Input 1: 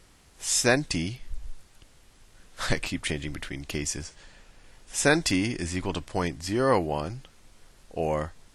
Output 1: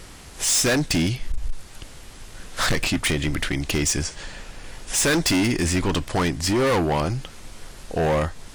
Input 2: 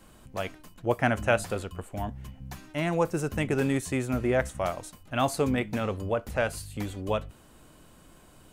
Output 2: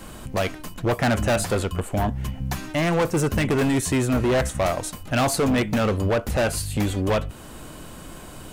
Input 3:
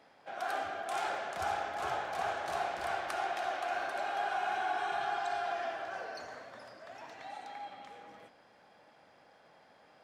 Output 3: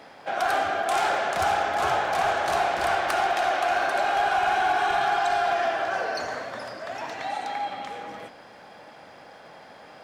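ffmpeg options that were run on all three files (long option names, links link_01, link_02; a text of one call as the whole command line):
ffmpeg -i in.wav -filter_complex "[0:a]asplit=2[link_01][link_02];[link_02]acompressor=threshold=-39dB:ratio=10,volume=-0.5dB[link_03];[link_01][link_03]amix=inputs=2:normalize=0,volume=26.5dB,asoftclip=hard,volume=-26.5dB,volume=9dB" out.wav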